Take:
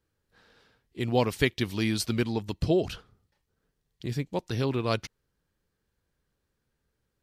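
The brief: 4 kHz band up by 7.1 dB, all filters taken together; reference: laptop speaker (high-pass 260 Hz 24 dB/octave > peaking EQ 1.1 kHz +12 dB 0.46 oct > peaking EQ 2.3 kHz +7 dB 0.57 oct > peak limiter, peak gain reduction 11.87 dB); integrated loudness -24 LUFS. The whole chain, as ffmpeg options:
-af "highpass=f=260:w=0.5412,highpass=f=260:w=1.3066,equalizer=f=1100:t=o:w=0.46:g=12,equalizer=f=2300:t=o:w=0.57:g=7,equalizer=f=4000:t=o:g=7,volume=2,alimiter=limit=0.335:level=0:latency=1"

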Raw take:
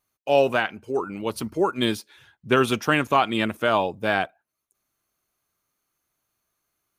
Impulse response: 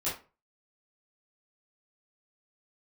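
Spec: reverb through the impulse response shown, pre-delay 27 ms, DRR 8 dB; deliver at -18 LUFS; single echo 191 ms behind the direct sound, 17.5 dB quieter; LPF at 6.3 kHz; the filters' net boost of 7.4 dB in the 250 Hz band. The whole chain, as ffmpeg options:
-filter_complex "[0:a]lowpass=6300,equalizer=f=250:t=o:g=9,aecho=1:1:191:0.133,asplit=2[s0][s1];[1:a]atrim=start_sample=2205,adelay=27[s2];[s1][s2]afir=irnorm=-1:irlink=0,volume=0.211[s3];[s0][s3]amix=inputs=2:normalize=0,volume=1.26"

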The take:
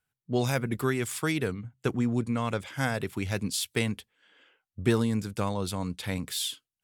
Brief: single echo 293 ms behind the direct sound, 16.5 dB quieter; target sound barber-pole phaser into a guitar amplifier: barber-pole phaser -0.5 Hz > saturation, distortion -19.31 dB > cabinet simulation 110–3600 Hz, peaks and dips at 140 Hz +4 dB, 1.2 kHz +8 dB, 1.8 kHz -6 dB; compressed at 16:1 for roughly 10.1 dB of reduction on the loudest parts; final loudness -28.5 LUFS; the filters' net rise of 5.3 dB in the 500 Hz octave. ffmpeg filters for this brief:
-filter_complex "[0:a]equalizer=f=500:t=o:g=6.5,acompressor=threshold=0.0501:ratio=16,aecho=1:1:293:0.15,asplit=2[s0][s1];[s1]afreqshift=-0.5[s2];[s0][s2]amix=inputs=2:normalize=1,asoftclip=threshold=0.0631,highpass=110,equalizer=f=140:t=q:w=4:g=4,equalizer=f=1200:t=q:w=4:g=8,equalizer=f=1800:t=q:w=4:g=-6,lowpass=f=3600:w=0.5412,lowpass=f=3600:w=1.3066,volume=2.82"

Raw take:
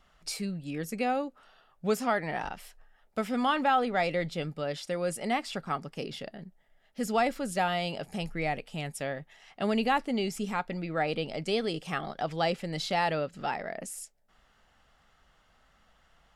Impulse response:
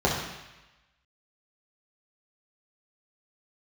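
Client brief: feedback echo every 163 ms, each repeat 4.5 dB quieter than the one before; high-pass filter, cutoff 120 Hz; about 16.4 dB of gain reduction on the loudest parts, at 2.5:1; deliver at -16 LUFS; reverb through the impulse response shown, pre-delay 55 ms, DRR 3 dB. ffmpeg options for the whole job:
-filter_complex "[0:a]highpass=120,acompressor=threshold=0.00447:ratio=2.5,aecho=1:1:163|326|489|652|815|978|1141|1304|1467:0.596|0.357|0.214|0.129|0.0772|0.0463|0.0278|0.0167|0.01,asplit=2[s0][s1];[1:a]atrim=start_sample=2205,adelay=55[s2];[s1][s2]afir=irnorm=-1:irlink=0,volume=0.112[s3];[s0][s3]amix=inputs=2:normalize=0,volume=16.8"

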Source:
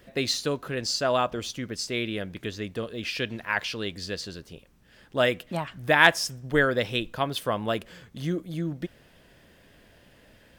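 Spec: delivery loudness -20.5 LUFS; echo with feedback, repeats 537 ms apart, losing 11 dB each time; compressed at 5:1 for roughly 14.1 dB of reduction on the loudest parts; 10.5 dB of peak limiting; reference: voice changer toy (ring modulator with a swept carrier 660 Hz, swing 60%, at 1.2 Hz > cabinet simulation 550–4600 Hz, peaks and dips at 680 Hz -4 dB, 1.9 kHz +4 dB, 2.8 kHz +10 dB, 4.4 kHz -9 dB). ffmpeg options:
-af "acompressor=threshold=0.0398:ratio=5,alimiter=level_in=1.26:limit=0.0631:level=0:latency=1,volume=0.794,aecho=1:1:537|1074|1611:0.282|0.0789|0.0221,aeval=exprs='val(0)*sin(2*PI*660*n/s+660*0.6/1.2*sin(2*PI*1.2*n/s))':c=same,highpass=550,equalizer=f=680:t=q:w=4:g=-4,equalizer=f=1900:t=q:w=4:g=4,equalizer=f=2800:t=q:w=4:g=10,equalizer=f=4400:t=q:w=4:g=-9,lowpass=f=4600:w=0.5412,lowpass=f=4600:w=1.3066,volume=8.41"

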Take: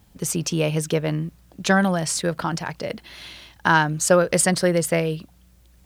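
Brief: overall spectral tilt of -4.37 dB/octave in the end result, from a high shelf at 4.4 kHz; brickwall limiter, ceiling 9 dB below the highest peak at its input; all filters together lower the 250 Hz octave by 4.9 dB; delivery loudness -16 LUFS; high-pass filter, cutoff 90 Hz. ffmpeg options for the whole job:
-af "highpass=90,equalizer=f=250:t=o:g=-8.5,highshelf=f=4400:g=-8.5,volume=3.35,alimiter=limit=0.708:level=0:latency=1"

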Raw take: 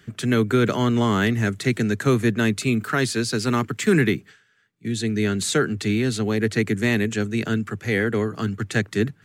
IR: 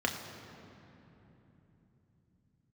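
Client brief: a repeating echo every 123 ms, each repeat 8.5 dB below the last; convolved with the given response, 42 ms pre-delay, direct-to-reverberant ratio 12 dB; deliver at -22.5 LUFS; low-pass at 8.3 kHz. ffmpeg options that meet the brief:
-filter_complex "[0:a]lowpass=8300,aecho=1:1:123|246|369|492:0.376|0.143|0.0543|0.0206,asplit=2[s0][s1];[1:a]atrim=start_sample=2205,adelay=42[s2];[s1][s2]afir=irnorm=-1:irlink=0,volume=0.1[s3];[s0][s3]amix=inputs=2:normalize=0,volume=0.891"

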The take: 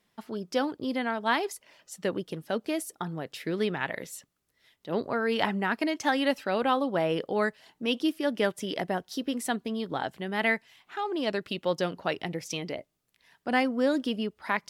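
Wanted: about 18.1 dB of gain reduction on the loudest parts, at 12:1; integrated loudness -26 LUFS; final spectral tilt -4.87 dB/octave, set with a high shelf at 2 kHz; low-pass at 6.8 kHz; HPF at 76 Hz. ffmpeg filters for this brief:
-af "highpass=76,lowpass=6800,highshelf=f=2000:g=-3.5,acompressor=threshold=0.01:ratio=12,volume=8.91"

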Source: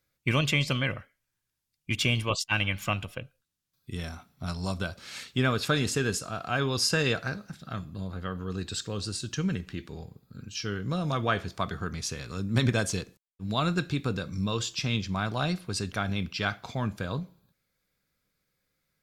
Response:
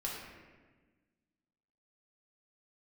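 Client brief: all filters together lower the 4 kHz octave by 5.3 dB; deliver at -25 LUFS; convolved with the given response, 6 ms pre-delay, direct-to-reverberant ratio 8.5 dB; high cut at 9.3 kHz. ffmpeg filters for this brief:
-filter_complex "[0:a]lowpass=9300,equalizer=f=4000:t=o:g=-7,asplit=2[s0][s1];[1:a]atrim=start_sample=2205,adelay=6[s2];[s1][s2]afir=irnorm=-1:irlink=0,volume=0.299[s3];[s0][s3]amix=inputs=2:normalize=0,volume=1.88"

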